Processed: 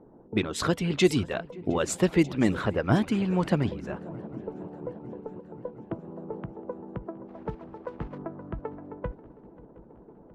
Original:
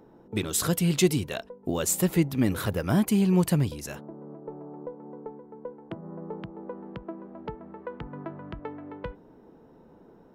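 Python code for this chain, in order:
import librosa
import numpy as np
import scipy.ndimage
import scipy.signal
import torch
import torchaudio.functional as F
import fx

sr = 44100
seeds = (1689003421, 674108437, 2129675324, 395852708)

y = fx.block_float(x, sr, bits=3, at=(7.27, 8.17), fade=0.02)
y = fx.echo_swing(y, sr, ms=717, ratio=3, feedback_pct=64, wet_db=-19)
y = fx.hpss(y, sr, part='harmonic', gain_db=-10)
y = fx.env_lowpass(y, sr, base_hz=950.0, full_db=-18.0)
y = F.gain(torch.from_numpy(y), 5.0).numpy()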